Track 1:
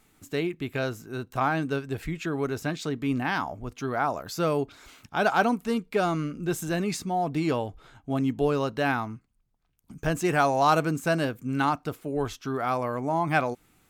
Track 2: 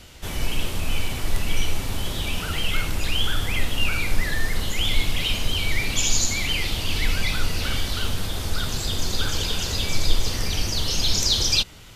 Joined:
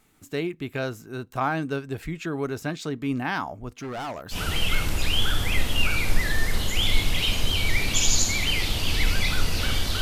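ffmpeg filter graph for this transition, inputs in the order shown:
ffmpeg -i cue0.wav -i cue1.wav -filter_complex "[0:a]asettb=1/sr,asplit=3[link_01][link_02][link_03];[link_01]atrim=end=3.724[link_04];[link_02]atrim=start=3.72:end=4.38,asetpts=PTS-STARTPTS,afade=type=in:duration=0.004:curve=qsin,afade=type=out:start_time=0.656:duration=0.004:curve=qsin,asoftclip=type=hard:threshold=-30dB[link_05];[link_03]atrim=start=4.376[link_06];[link_04][link_05]acrossfade=duration=0.004:curve1=hsin:curve2=qsin[link_07];[link_07][link_06]acrossfade=duration=0.004:curve1=qsin:curve2=hsin,apad=whole_dur=10.01,atrim=end=10.01,atrim=end=4.38,asetpts=PTS-STARTPTS[link_08];[1:a]atrim=start=2.32:end=8.03,asetpts=PTS-STARTPTS[link_09];[link_08][link_09]acrossfade=duration=0.08:curve1=tri:curve2=tri" out.wav

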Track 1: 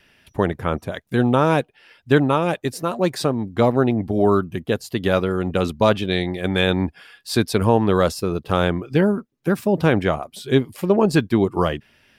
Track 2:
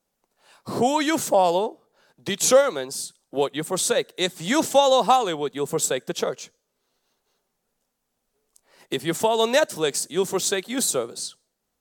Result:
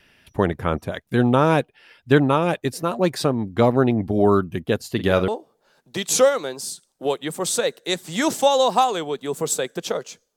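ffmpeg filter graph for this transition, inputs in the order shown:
ffmpeg -i cue0.wav -i cue1.wav -filter_complex "[0:a]asplit=3[link_01][link_02][link_03];[link_01]afade=type=out:start_time=4.8:duration=0.02[link_04];[link_02]asplit=2[link_05][link_06];[link_06]adelay=45,volume=-12dB[link_07];[link_05][link_07]amix=inputs=2:normalize=0,afade=type=in:start_time=4.8:duration=0.02,afade=type=out:start_time=5.28:duration=0.02[link_08];[link_03]afade=type=in:start_time=5.28:duration=0.02[link_09];[link_04][link_08][link_09]amix=inputs=3:normalize=0,apad=whole_dur=10.36,atrim=end=10.36,atrim=end=5.282[link_10];[1:a]atrim=start=1.598:end=6.68[link_11];[link_10][link_11]acrossfade=duration=0.004:curve1=hsin:curve2=hsin" out.wav

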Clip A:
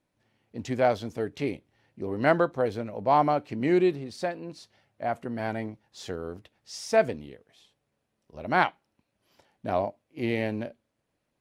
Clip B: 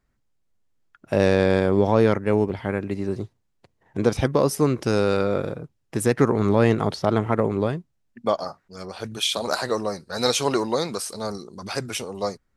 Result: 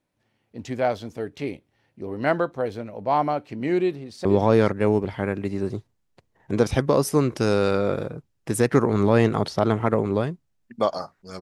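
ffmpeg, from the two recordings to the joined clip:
ffmpeg -i cue0.wav -i cue1.wav -filter_complex "[0:a]apad=whole_dur=11.41,atrim=end=11.41,atrim=end=4.252[link_01];[1:a]atrim=start=1.708:end=8.87[link_02];[link_01][link_02]acrossfade=duration=0.004:curve1=hsin:curve2=hsin,asplit=2[link_03][link_04];[link_04]afade=type=in:start_time=3.82:duration=0.01,afade=type=out:start_time=4.25:duration=0.01,aecho=0:1:470|940:0.281838|0.0281838[link_05];[link_03][link_05]amix=inputs=2:normalize=0" out.wav

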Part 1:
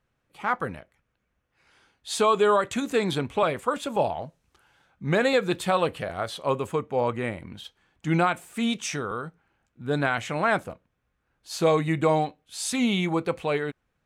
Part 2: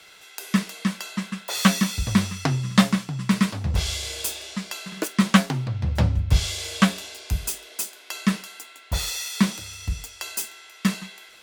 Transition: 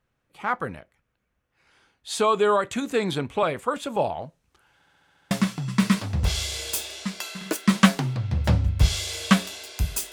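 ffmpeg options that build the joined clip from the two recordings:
ffmpeg -i cue0.wav -i cue1.wav -filter_complex "[0:a]apad=whole_dur=10.12,atrim=end=10.12,asplit=8[link_01][link_02][link_03][link_04][link_05][link_06][link_07][link_08];[link_01]atrim=end=4.822[link_09];[link_02]atrim=start=4.748:end=4.822[link_10];[link_03]atrim=start=4.748:end=4.822[link_11];[link_04]atrim=start=4.748:end=4.822[link_12];[link_05]atrim=start=4.748:end=4.822[link_13];[link_06]atrim=start=4.748:end=4.822[link_14];[link_07]atrim=start=4.748:end=4.822[link_15];[link_08]atrim=start=4.748:end=4.822[link_16];[1:a]atrim=start=2.818:end=7.63[link_17];[link_09][link_10]acrossfade=duration=0.004:curve1=hsin:curve2=hsin[link_18];[link_18][link_11]acrossfade=duration=0.004:curve1=hsin:curve2=hsin[link_19];[link_19][link_12]acrossfade=duration=0.004:curve1=hsin:curve2=hsin[link_20];[link_20][link_13]acrossfade=duration=0.004:curve1=hsin:curve2=hsin[link_21];[link_21][link_14]acrossfade=duration=0.004:curve1=hsin:curve2=hsin[link_22];[link_22][link_15]acrossfade=duration=0.004:curve1=hsin:curve2=hsin[link_23];[link_23][link_16]acrossfade=duration=0.004:curve1=hsin:curve2=hsin[link_24];[link_24][link_17]acrossfade=duration=0.004:curve1=hsin:curve2=hsin" out.wav

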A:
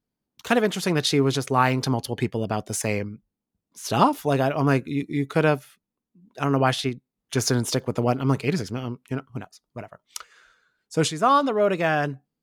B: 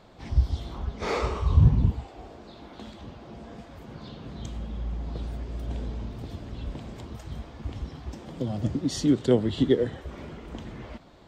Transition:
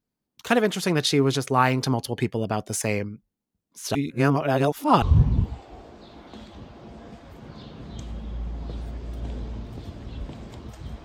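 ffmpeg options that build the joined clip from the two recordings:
ffmpeg -i cue0.wav -i cue1.wav -filter_complex "[0:a]apad=whole_dur=11.04,atrim=end=11.04,asplit=2[link_01][link_02];[link_01]atrim=end=3.952[link_03];[link_02]atrim=start=3.948:end=5.022,asetpts=PTS-STARTPTS,areverse[link_04];[1:a]atrim=start=1.478:end=7.5[link_05];[link_03][link_04]acrossfade=duration=0.004:curve1=hsin:curve2=hsin[link_06];[link_06][link_05]acrossfade=duration=0.004:curve1=hsin:curve2=hsin" out.wav

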